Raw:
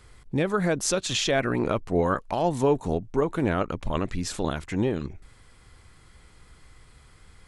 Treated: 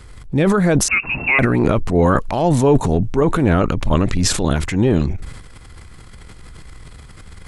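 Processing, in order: low shelf 220 Hz +6 dB; transient shaper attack -3 dB, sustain +10 dB; 0.88–1.39 inverted band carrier 2700 Hz; gain +7 dB

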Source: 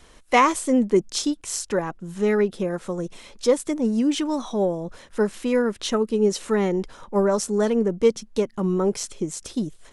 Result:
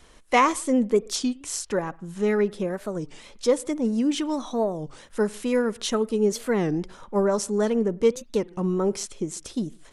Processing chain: 4.77–6.25 high shelf 8200 Hz +7.5 dB; on a send at -22.5 dB: reverb, pre-delay 48 ms; on the sum: record warp 33 1/3 rpm, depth 250 cents; gain -2 dB

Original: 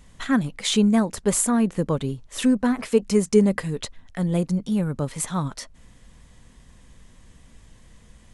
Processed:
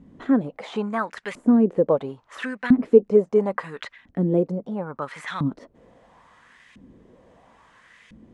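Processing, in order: de-esser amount 80%; 4.58–5.02 high shelf 2100 Hz -10.5 dB; in parallel at 0 dB: compressor, threshold -30 dBFS, peak gain reduction 17.5 dB; on the sum: LFO band-pass saw up 0.74 Hz 230–2400 Hz; gain +8 dB

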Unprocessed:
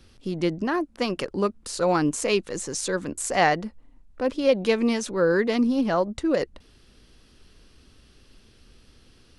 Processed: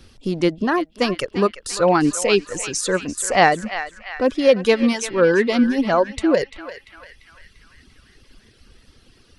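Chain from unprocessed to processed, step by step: reverb removal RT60 1.9 s; narrowing echo 0.344 s, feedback 61%, band-pass 2100 Hz, level -9 dB; gain +6.5 dB

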